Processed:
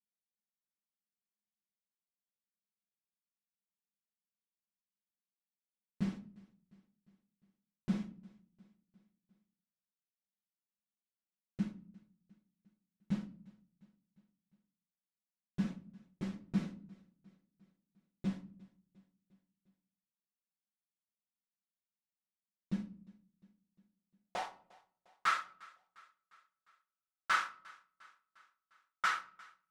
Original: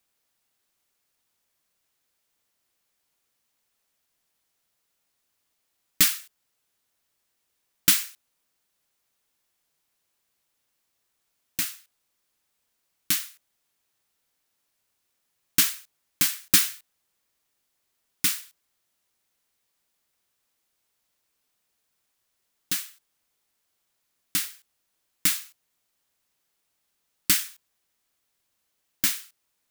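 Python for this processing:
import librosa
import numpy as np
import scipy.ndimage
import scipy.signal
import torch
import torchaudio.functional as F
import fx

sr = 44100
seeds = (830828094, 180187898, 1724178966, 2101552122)

y = fx.lower_of_two(x, sr, delay_ms=5.4)
y = scipy.signal.sosfilt(scipy.signal.butter(2, 7100.0, 'lowpass', fs=sr, output='sos'), y)
y = fx.leveller(y, sr, passes=5)
y = fx.filter_sweep_bandpass(y, sr, from_hz=210.0, to_hz=1300.0, start_s=23.62, end_s=24.72, q=7.3)
y = fx.echo_feedback(y, sr, ms=353, feedback_pct=57, wet_db=-24)
y = fx.room_shoebox(y, sr, seeds[0], volume_m3=570.0, walls='furnished', distance_m=0.75)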